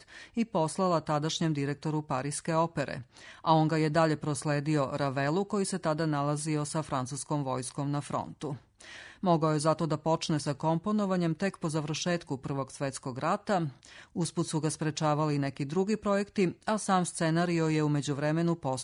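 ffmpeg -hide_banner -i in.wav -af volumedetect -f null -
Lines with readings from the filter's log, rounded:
mean_volume: -30.1 dB
max_volume: -11.5 dB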